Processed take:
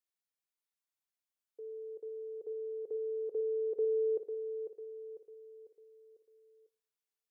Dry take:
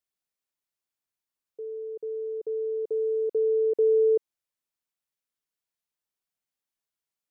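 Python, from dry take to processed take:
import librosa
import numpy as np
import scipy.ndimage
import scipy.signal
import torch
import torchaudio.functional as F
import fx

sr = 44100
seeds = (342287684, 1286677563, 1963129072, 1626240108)

y = fx.low_shelf(x, sr, hz=420.0, db=-7.0)
y = fx.echo_feedback(y, sr, ms=498, feedback_pct=45, wet_db=-8)
y = fx.rev_double_slope(y, sr, seeds[0], early_s=0.44, late_s=1.5, knee_db=-18, drr_db=13.0)
y = y * librosa.db_to_amplitude(-5.5)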